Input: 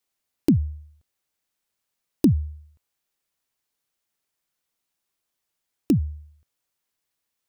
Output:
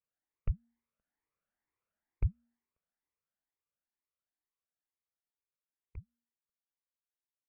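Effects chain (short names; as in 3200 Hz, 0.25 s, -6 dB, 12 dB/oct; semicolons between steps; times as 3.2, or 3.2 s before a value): moving spectral ripple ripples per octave 1.1, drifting +2.2 Hz, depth 11 dB; Doppler pass-by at 1.61, 7 m/s, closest 5.5 m; mistuned SSB -310 Hz 250–2500 Hz; gain -5.5 dB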